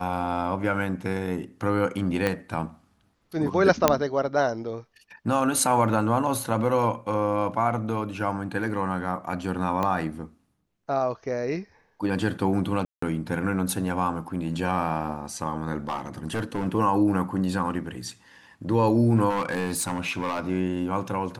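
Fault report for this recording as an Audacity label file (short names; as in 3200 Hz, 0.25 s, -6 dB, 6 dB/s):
2.270000	2.270000	pop -11 dBFS
3.880000	3.880000	pop -2 dBFS
9.830000	9.830000	pop -14 dBFS
12.850000	13.020000	gap 0.174 s
15.890000	16.670000	clipped -23.5 dBFS
19.290000	20.400000	clipped -22.5 dBFS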